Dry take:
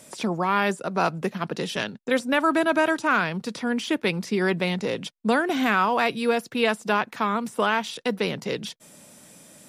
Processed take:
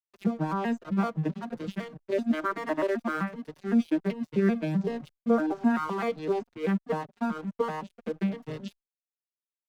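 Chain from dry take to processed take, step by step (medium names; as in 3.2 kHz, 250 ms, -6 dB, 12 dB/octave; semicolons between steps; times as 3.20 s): vocoder on a broken chord major triad, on D#3, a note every 128 ms; 5.29–5.74 s: time-frequency box 1.7–5.2 kHz -12 dB; 6.53–8.20 s: peaking EQ 5.6 kHz -10.5 dB 1.9 oct; crossover distortion -41.5 dBFS; endless flanger 5 ms -1.4 Hz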